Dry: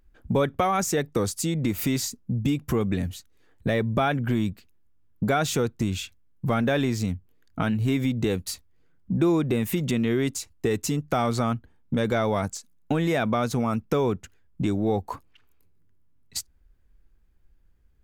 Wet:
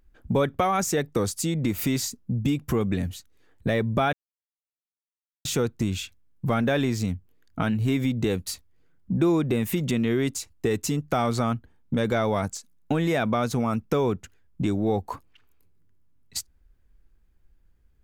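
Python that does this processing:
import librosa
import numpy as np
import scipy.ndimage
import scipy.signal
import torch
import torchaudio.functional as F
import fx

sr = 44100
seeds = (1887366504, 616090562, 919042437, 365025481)

y = fx.edit(x, sr, fx.silence(start_s=4.13, length_s=1.32), tone=tone)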